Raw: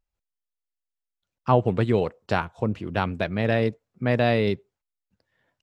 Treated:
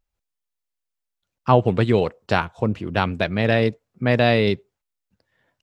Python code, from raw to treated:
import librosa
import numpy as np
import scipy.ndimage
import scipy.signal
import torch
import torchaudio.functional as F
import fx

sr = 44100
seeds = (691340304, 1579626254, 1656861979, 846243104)

y = fx.dynamic_eq(x, sr, hz=3900.0, q=0.7, threshold_db=-41.0, ratio=4.0, max_db=4)
y = y * 10.0 ** (3.5 / 20.0)